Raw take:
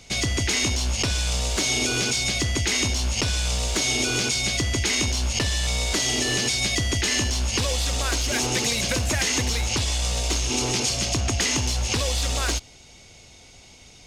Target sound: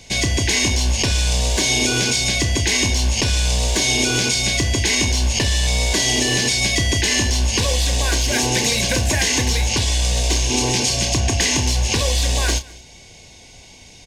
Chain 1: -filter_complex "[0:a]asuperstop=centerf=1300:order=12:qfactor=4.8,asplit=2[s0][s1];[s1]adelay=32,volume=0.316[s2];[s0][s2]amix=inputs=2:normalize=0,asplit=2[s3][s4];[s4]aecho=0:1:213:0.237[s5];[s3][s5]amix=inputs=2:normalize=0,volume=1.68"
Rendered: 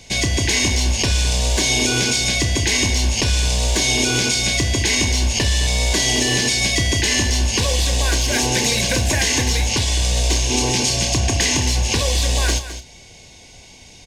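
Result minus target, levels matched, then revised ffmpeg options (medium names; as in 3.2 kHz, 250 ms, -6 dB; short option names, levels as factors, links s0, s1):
echo-to-direct +11.5 dB
-filter_complex "[0:a]asuperstop=centerf=1300:order=12:qfactor=4.8,asplit=2[s0][s1];[s1]adelay=32,volume=0.316[s2];[s0][s2]amix=inputs=2:normalize=0,asplit=2[s3][s4];[s4]aecho=0:1:213:0.0631[s5];[s3][s5]amix=inputs=2:normalize=0,volume=1.68"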